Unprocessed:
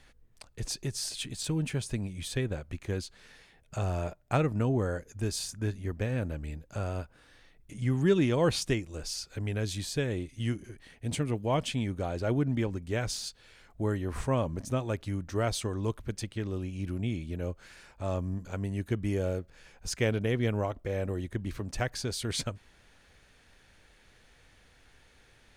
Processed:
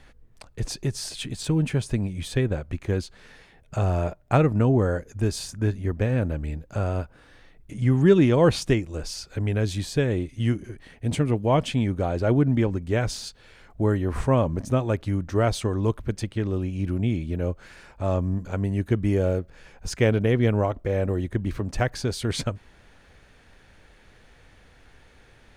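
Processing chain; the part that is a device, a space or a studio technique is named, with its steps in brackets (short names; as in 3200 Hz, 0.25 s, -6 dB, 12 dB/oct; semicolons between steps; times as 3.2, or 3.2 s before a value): behind a face mask (high shelf 2500 Hz -8 dB); gain +8 dB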